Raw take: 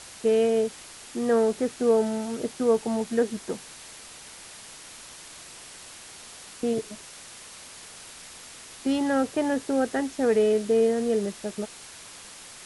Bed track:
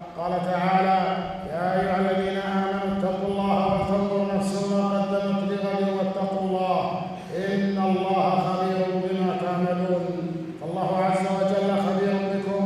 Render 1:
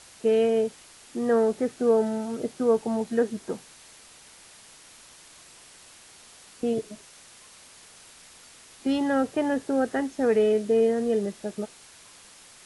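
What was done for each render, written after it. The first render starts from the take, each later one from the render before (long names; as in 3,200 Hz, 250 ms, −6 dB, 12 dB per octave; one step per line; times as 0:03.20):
noise reduction from a noise print 6 dB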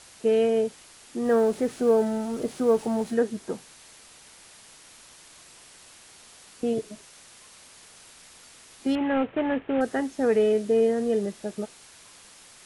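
0:01.25–0:03.14: mu-law and A-law mismatch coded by mu
0:08.95–0:09.81: variable-slope delta modulation 16 kbit/s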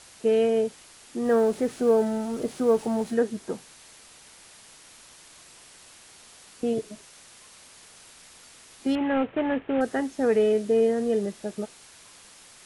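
no processing that can be heard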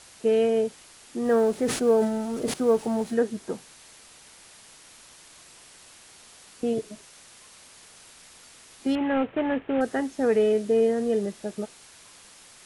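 0:01.64–0:02.54: level that may fall only so fast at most 70 dB per second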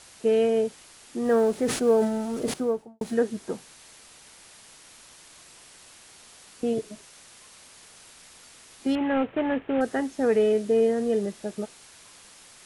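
0:02.45–0:03.01: fade out and dull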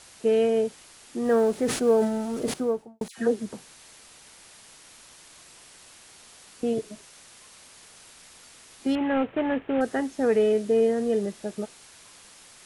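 0:03.08–0:03.53: all-pass dispersion lows, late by 96 ms, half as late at 1,500 Hz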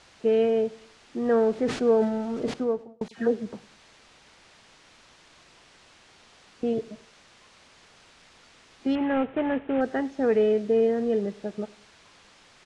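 high-frequency loss of the air 130 metres
repeating echo 99 ms, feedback 43%, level −23 dB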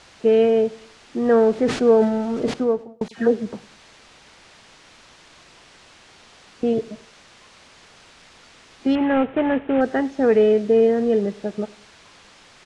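level +6 dB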